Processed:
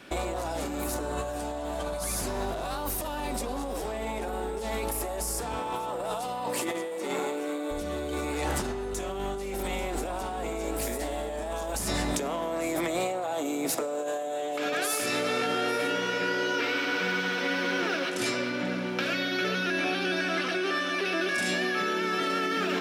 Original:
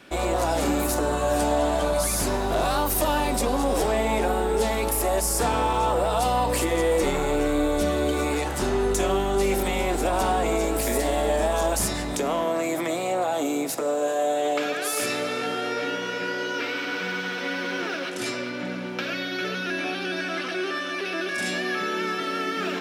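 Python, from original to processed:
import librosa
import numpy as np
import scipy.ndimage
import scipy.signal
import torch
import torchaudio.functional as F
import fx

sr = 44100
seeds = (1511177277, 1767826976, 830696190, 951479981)

y = fx.highpass(x, sr, hz=fx.line((5.58, 99.0), (7.7, 260.0)), slope=24, at=(5.58, 7.7), fade=0.02)
y = y + 10.0 ** (-18.5 / 20.0) * np.pad(y, (int(841 * sr / 1000.0), 0))[:len(y)]
y = fx.over_compress(y, sr, threshold_db=-28.0, ratio=-1.0)
y = y * 10.0 ** (-2.5 / 20.0)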